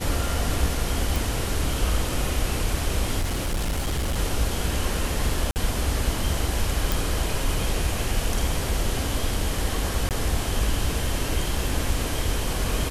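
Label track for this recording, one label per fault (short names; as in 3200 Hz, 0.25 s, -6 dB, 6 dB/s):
1.160000	1.160000	pop
3.210000	4.180000	clipped -21.5 dBFS
5.510000	5.560000	gap 49 ms
6.920000	6.920000	pop
10.090000	10.110000	gap 18 ms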